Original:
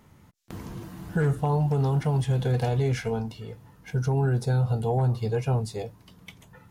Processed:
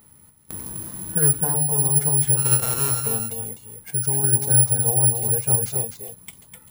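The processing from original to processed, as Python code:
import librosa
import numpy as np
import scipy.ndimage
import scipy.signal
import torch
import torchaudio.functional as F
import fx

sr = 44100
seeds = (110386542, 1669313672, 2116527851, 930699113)

p1 = fx.sample_sort(x, sr, block=32, at=(2.36, 3.03), fade=0.02)
p2 = fx.level_steps(p1, sr, step_db=22)
p3 = p1 + (p2 * librosa.db_to_amplitude(-2.0))
p4 = p3 + 10.0 ** (-6.0 / 20.0) * np.pad(p3, (int(253 * sr / 1000.0), 0))[:len(p3)]
p5 = (np.kron(p4[::4], np.eye(4)[0]) * 4)[:len(p4)]
y = p5 * librosa.db_to_amplitude(-4.5)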